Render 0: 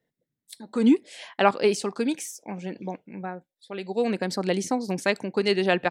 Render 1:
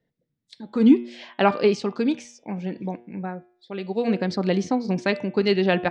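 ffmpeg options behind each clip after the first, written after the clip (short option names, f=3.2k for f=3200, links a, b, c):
-af "lowpass=f=5.4k:w=0.5412,lowpass=f=5.4k:w=1.3066,lowshelf=f=240:g=9,bandreject=f=119.4:t=h:w=4,bandreject=f=238.8:t=h:w=4,bandreject=f=358.2:t=h:w=4,bandreject=f=477.6:t=h:w=4,bandreject=f=597:t=h:w=4,bandreject=f=716.4:t=h:w=4,bandreject=f=835.8:t=h:w=4,bandreject=f=955.2:t=h:w=4,bandreject=f=1.0746k:t=h:w=4,bandreject=f=1.194k:t=h:w=4,bandreject=f=1.3134k:t=h:w=4,bandreject=f=1.4328k:t=h:w=4,bandreject=f=1.5522k:t=h:w=4,bandreject=f=1.6716k:t=h:w=4,bandreject=f=1.791k:t=h:w=4,bandreject=f=1.9104k:t=h:w=4,bandreject=f=2.0298k:t=h:w=4,bandreject=f=2.1492k:t=h:w=4,bandreject=f=2.2686k:t=h:w=4,bandreject=f=2.388k:t=h:w=4,bandreject=f=2.5074k:t=h:w=4,bandreject=f=2.6268k:t=h:w=4,bandreject=f=2.7462k:t=h:w=4,bandreject=f=2.8656k:t=h:w=4,bandreject=f=2.985k:t=h:w=4,bandreject=f=3.1044k:t=h:w=4,bandreject=f=3.2238k:t=h:w=4,bandreject=f=3.3432k:t=h:w=4,bandreject=f=3.4626k:t=h:w=4,bandreject=f=3.582k:t=h:w=4,bandreject=f=3.7014k:t=h:w=4"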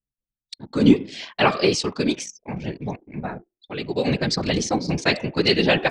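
-af "afftfilt=real='hypot(re,im)*cos(2*PI*random(0))':imag='hypot(re,im)*sin(2*PI*random(1))':win_size=512:overlap=0.75,anlmdn=0.00398,crystalizer=i=5.5:c=0,volume=5.5dB"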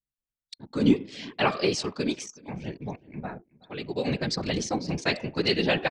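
-filter_complex "[0:a]asplit=2[a][b];[b]adelay=373.2,volume=-23dB,highshelf=f=4k:g=-8.4[c];[a][c]amix=inputs=2:normalize=0,volume=-6dB"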